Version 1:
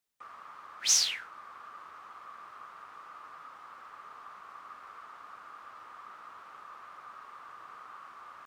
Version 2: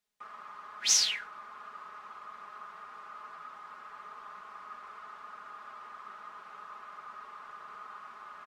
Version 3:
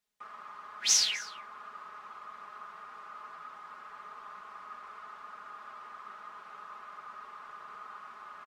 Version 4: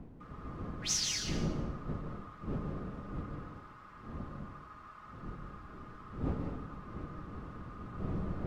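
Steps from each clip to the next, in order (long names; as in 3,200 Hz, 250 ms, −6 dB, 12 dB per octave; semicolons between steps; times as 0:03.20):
high-shelf EQ 10,000 Hz −9 dB; comb filter 4.8 ms, depth 73%
single-tap delay 255 ms −20 dB
wind on the microphone 220 Hz −34 dBFS; dense smooth reverb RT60 0.85 s, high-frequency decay 0.9×, pre-delay 120 ms, DRR 2.5 dB; level −8.5 dB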